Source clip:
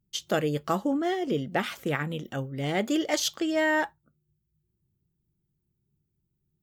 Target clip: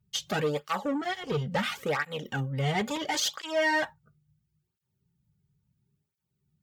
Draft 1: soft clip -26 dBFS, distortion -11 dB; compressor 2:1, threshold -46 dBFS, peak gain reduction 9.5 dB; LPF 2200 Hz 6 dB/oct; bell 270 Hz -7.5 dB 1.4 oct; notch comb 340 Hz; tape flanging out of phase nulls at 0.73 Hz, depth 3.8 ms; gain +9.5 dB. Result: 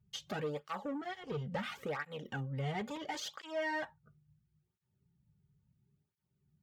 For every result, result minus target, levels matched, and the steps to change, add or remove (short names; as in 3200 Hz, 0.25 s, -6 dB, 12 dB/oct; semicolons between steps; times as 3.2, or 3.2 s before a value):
compressor: peak gain reduction +9.5 dB; 8000 Hz band -5.0 dB
remove: compressor 2:1, threshold -46 dBFS, peak gain reduction 9.5 dB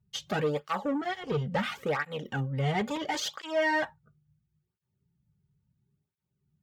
8000 Hz band -5.5 dB
change: LPF 6400 Hz 6 dB/oct